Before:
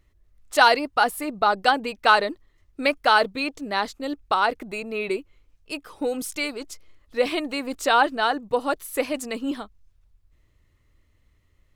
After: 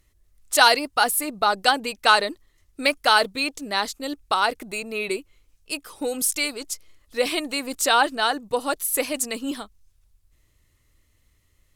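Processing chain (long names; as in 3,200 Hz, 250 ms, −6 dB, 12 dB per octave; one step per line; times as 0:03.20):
parametric band 11,000 Hz +14 dB 2.2 octaves
level −1.5 dB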